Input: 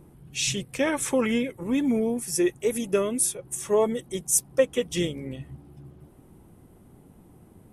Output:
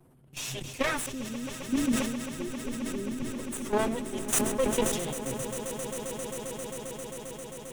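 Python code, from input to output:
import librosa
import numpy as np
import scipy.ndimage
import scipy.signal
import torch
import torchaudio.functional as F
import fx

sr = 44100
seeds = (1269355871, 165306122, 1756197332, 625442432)

y = fx.lower_of_two(x, sr, delay_ms=7.8)
y = fx.cheby2_lowpass(y, sr, hz=1500.0, order=4, stop_db=70, at=(1.06, 3.35))
y = fx.level_steps(y, sr, step_db=12)
y = fx.echo_swell(y, sr, ms=133, loudest=8, wet_db=-14.0)
y = fx.sustainer(y, sr, db_per_s=45.0)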